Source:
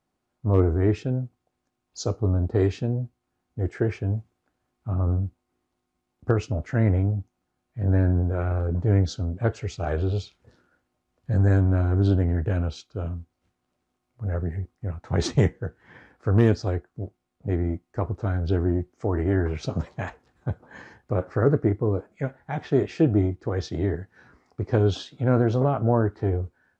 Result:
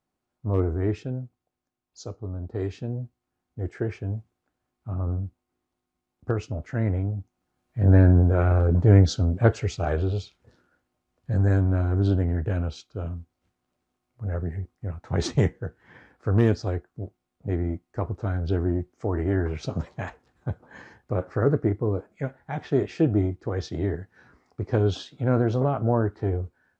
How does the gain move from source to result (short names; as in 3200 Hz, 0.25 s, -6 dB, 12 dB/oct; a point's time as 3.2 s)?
0.94 s -4 dB
2.29 s -11 dB
3 s -4 dB
7.14 s -4 dB
7.86 s +5 dB
9.53 s +5 dB
10.17 s -1.5 dB